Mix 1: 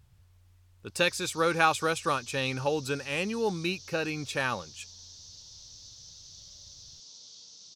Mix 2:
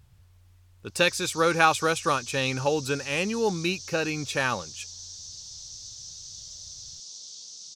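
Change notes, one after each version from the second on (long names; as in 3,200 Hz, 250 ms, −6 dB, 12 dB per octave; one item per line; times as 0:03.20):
speech +3.5 dB
background: remove high-frequency loss of the air 140 metres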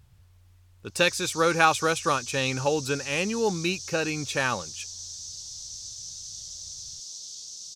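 background: remove band-pass filter 130–6,100 Hz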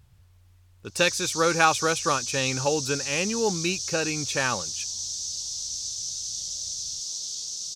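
background +7.0 dB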